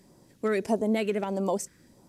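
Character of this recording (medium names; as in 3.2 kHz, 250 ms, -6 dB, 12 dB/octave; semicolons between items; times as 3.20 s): phasing stages 2, 1.6 Hz, lowest notch 800–1700 Hz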